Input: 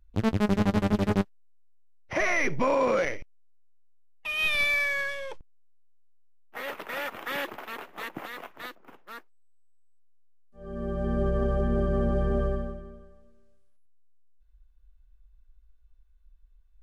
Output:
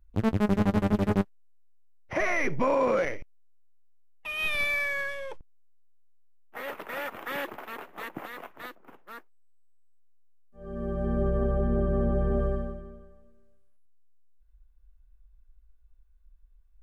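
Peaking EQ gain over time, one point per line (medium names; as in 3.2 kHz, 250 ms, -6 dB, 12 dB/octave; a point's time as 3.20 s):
peaking EQ 4.7 kHz 1.9 oct
10.67 s -6 dB
11.58 s -14.5 dB
12.16 s -14.5 dB
12.59 s -7 dB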